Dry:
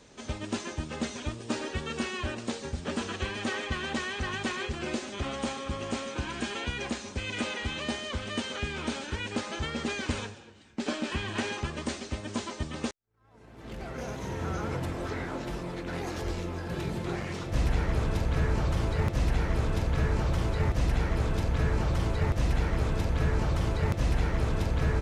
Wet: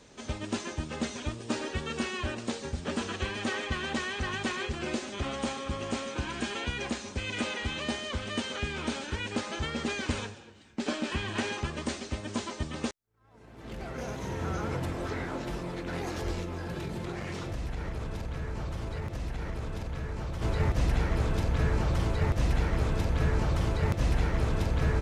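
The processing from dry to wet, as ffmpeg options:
-filter_complex "[0:a]asplit=3[s0][s1][s2];[s0]afade=t=out:st=16.43:d=0.02[s3];[s1]acompressor=threshold=0.0282:ratio=6:attack=3.2:release=140:knee=1:detection=peak,afade=t=in:st=16.43:d=0.02,afade=t=out:st=20.41:d=0.02[s4];[s2]afade=t=in:st=20.41:d=0.02[s5];[s3][s4][s5]amix=inputs=3:normalize=0"

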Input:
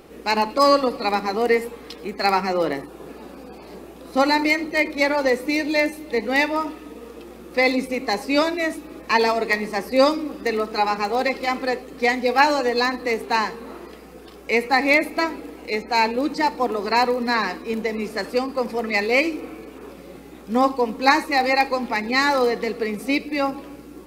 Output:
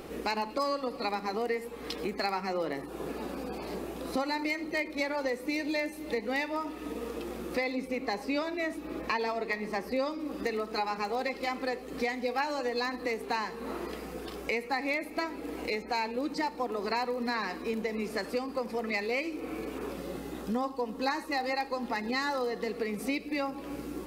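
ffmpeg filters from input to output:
-filter_complex "[0:a]asettb=1/sr,asplit=3[s0][s1][s2];[s0]atrim=end=7.644[s3];[s1]atrim=start=7.64:end=10.2,asetpts=PTS-STARTPTS,afade=t=in:d=0.004:c=qsin,afade=t=out:st=2.556:d=0.004:c=qsin,equalizer=f=10000:w=0.52:g=-6.5[s4];[s2]atrim=start=10.196[s5];[s3][s4]acrossfade=d=0.004:c1=hsin:c2=qsin[s6];[s6][s5]acrossfade=d=0.004:c1=qsin:c2=hsin,asettb=1/sr,asplit=3[s7][s8][s9];[s7]atrim=end=19.974[s10];[s8]atrim=start=19.97:end=22.69,asetpts=PTS-STARTPTS,afade=t=in:d=0.004:c=qsin,afade=t=out:st=2.716:d=0.004:c=qsin,bandreject=f=2300:w=6.7[s11];[s9]atrim=start=22.686[s12];[s10][s11]acrossfade=d=0.004:c1=hsin:c2=qsin[s13];[s13][s12]acrossfade=d=0.004:c1=qsin:c2=hsin,acompressor=threshold=0.02:ratio=4,volume=1.33"

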